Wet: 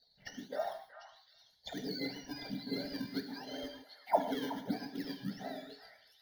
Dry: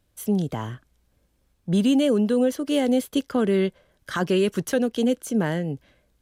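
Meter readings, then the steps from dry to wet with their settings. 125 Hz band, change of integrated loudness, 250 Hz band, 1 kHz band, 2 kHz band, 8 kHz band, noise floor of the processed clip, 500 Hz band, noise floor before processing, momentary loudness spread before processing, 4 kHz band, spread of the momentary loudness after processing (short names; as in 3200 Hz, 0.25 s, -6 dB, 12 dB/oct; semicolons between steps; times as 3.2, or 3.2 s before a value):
-21.0 dB, -16.5 dB, -18.5 dB, -5.0 dB, -13.0 dB, -20.0 dB, -69 dBFS, -17.0 dB, -68 dBFS, 12 LU, -10.0 dB, 18 LU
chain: spectrum mirrored in octaves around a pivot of 1100 Hz; HPF 200 Hz 24 dB/oct; bell 4300 Hz +9 dB 0.66 oct; auto-wah 280–4400 Hz, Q 8.9, down, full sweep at -25 dBFS; in parallel at -8 dB: decimation with a swept rate 19×, swing 160% 1.4 Hz; on the sum: fixed phaser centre 1700 Hz, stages 8; delay with a stepping band-pass 0.373 s, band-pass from 1400 Hz, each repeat 1.4 oct, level -5.5 dB; non-linear reverb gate 0.18 s flat, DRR 7 dB; gain +14 dB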